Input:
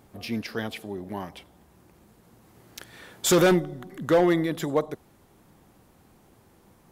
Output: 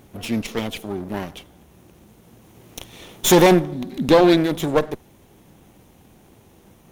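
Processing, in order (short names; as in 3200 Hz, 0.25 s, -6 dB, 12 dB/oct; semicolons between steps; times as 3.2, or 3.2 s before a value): minimum comb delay 0.31 ms; 3.72–4.37 thirty-one-band EQ 250 Hz +11 dB, 1250 Hz -5 dB, 4000 Hz +11 dB; gain +7 dB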